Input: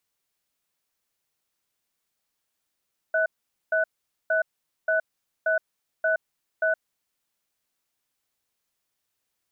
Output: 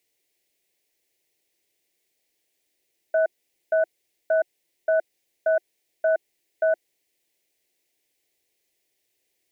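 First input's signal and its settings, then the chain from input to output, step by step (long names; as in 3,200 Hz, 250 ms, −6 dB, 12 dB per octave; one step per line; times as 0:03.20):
tone pair in a cadence 642 Hz, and 1,490 Hz, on 0.12 s, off 0.46 s, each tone −22.5 dBFS 3.65 s
drawn EQ curve 240 Hz 0 dB, 350 Hz +13 dB, 730 Hz +4 dB, 1,300 Hz −13 dB, 2,000 Hz +9 dB, 3,200 Hz +5 dB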